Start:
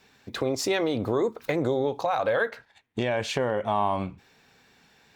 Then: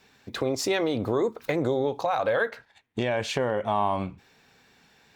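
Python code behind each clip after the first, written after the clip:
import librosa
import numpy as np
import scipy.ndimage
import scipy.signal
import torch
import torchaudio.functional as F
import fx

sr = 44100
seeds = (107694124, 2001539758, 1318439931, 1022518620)

y = x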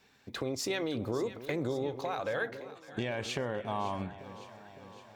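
y = fx.dynamic_eq(x, sr, hz=730.0, q=0.72, threshold_db=-36.0, ratio=4.0, max_db=-5)
y = fx.echo_alternate(y, sr, ms=280, hz=820.0, feedback_pct=79, wet_db=-13.0)
y = y * 10.0 ** (-5.5 / 20.0)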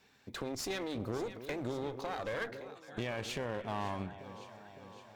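y = fx.clip_asym(x, sr, top_db=-40.0, bottom_db=-24.5)
y = y * 10.0 ** (-1.5 / 20.0)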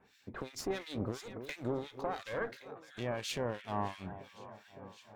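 y = fx.harmonic_tremolo(x, sr, hz=2.9, depth_pct=100, crossover_hz=1700.0)
y = y * 10.0 ** (4.0 / 20.0)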